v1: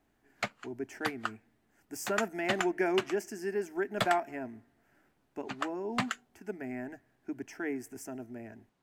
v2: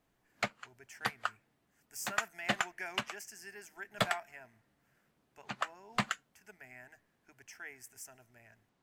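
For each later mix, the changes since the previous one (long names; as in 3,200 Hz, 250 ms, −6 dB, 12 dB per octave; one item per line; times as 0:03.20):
speech: add guitar amp tone stack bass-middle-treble 10-0-10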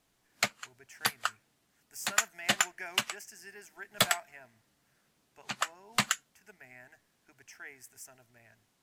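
background: remove low-pass filter 1,400 Hz 6 dB per octave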